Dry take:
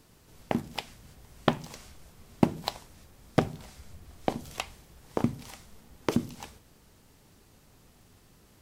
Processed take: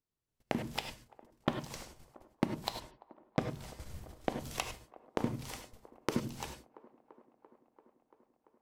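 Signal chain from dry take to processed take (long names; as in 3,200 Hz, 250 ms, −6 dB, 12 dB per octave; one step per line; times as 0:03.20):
0:02.80–0:03.39: Butterworth low-pass 4,300 Hz
noise gate −47 dBFS, range −37 dB
downward compressor 2.5 to 1, threshold −36 dBFS, peak gain reduction 14.5 dB
delay with a band-pass on its return 340 ms, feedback 76%, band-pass 620 Hz, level −19 dB
reverb whose tail is shaped and stops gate 120 ms rising, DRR 7 dB
level +2.5 dB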